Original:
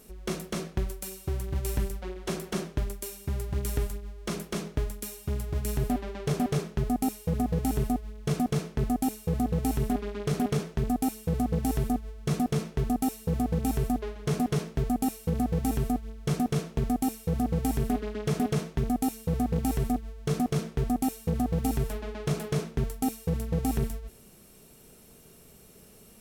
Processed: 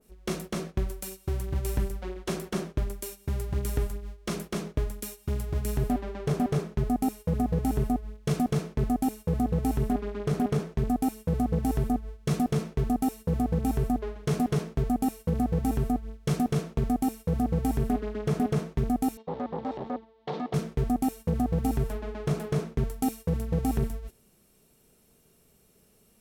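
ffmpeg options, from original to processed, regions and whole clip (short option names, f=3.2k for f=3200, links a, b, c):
-filter_complex "[0:a]asettb=1/sr,asplit=3[a][b][c];[a]atrim=end=19.174[d];[b]atrim=start=19.17:end=20.54,asetpts=PTS-STARTPTS,afade=t=in:d=0.004:c=qsin,afade=t=out:st=1.366:d=0.004:c=qsin,asoftclip=type=hard:threshold=-29dB,highpass=220,equalizer=f=520:t=q:w=4:g=6,equalizer=f=860:t=q:w=4:g=10,equalizer=f=1.5k:t=q:w=4:g=-5,equalizer=f=2.5k:t=q:w=4:g=-5,equalizer=f=3.7k:t=q:w=4:g=4,lowpass=f=4.1k:w=0.5412,lowpass=f=4.1k:w=1.3066[e];[c]atrim=start=20.536[f];[d][e]acrossfade=d=0.004:c1=hsin:c2=qsin[g];[g][f]acrossfade=d=0.004:c1=qsin:c2=hsin,agate=range=-10dB:threshold=-40dB:ratio=16:detection=peak,adynamicequalizer=threshold=0.00282:dfrequency=2000:dqfactor=0.7:tfrequency=2000:tqfactor=0.7:attack=5:release=100:ratio=0.375:range=3.5:mode=cutabove:tftype=highshelf,volume=1dB"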